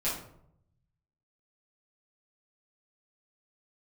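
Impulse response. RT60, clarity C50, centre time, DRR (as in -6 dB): 0.70 s, 3.5 dB, 41 ms, -10.0 dB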